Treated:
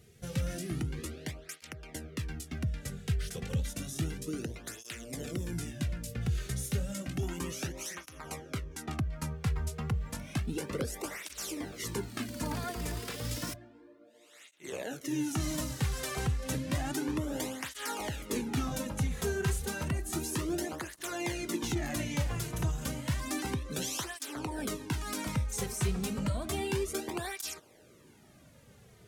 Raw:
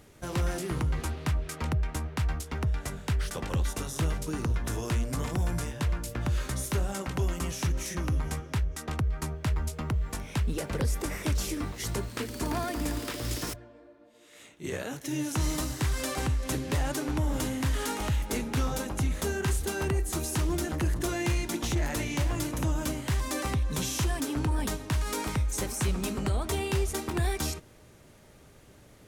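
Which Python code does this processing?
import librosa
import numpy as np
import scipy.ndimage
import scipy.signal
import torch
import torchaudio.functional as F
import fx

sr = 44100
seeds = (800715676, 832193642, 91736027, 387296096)

y = fx.peak_eq(x, sr, hz=980.0, db=fx.steps((0.0, -15.0), (7.23, -2.0)), octaves=0.87)
y = fx.flanger_cancel(y, sr, hz=0.31, depth_ms=3.7)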